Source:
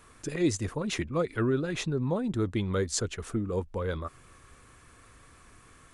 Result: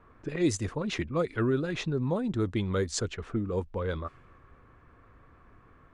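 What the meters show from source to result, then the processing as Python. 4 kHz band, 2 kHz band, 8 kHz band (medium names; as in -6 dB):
-1.0 dB, 0.0 dB, -3.0 dB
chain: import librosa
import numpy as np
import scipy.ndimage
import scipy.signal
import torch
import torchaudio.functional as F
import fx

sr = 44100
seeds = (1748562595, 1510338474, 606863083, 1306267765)

y = fx.env_lowpass(x, sr, base_hz=1300.0, full_db=-23.0)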